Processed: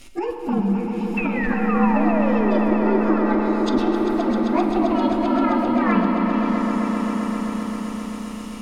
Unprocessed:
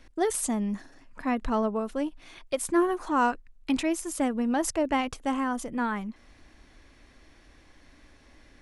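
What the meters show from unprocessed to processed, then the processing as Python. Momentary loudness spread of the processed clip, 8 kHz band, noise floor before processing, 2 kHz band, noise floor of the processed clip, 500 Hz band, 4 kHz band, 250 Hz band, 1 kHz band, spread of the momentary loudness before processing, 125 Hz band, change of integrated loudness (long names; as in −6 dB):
9 LU, below −10 dB, −57 dBFS, +7.0 dB, −32 dBFS, +8.0 dB, +4.0 dB, +11.0 dB, +7.0 dB, 9 LU, can't be measured, +8.0 dB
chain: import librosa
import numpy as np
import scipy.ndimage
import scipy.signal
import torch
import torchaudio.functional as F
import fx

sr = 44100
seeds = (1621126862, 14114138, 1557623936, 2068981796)

p1 = fx.partial_stretch(x, sr, pct=116)
p2 = fx.spec_paint(p1, sr, seeds[0], shape='fall', start_s=1.17, length_s=1.55, low_hz=280.0, high_hz=2700.0, level_db=-38.0)
p3 = fx.high_shelf(p2, sr, hz=3500.0, db=11.5)
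p4 = fx.over_compress(p3, sr, threshold_db=-30.0, ratio=-0.5)
p5 = fx.rev_schroeder(p4, sr, rt60_s=2.8, comb_ms=29, drr_db=4.0)
p6 = fx.env_lowpass_down(p5, sr, base_hz=1600.0, full_db=-29.0)
p7 = p6 + fx.echo_swell(p6, sr, ms=131, loudest=5, wet_db=-11, dry=0)
y = F.gain(torch.from_numpy(p7), 8.5).numpy()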